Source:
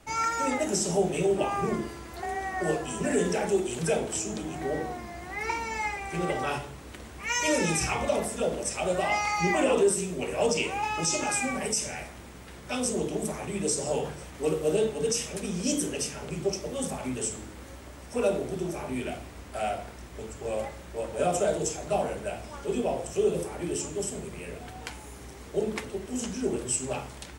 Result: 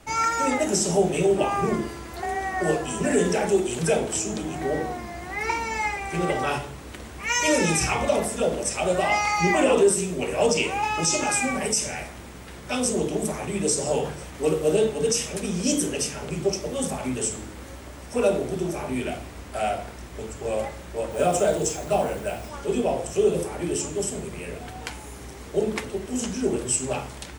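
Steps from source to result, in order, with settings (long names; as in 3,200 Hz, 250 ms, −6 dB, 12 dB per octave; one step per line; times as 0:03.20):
0:21.10–0:22.48: background noise blue −57 dBFS
level +4.5 dB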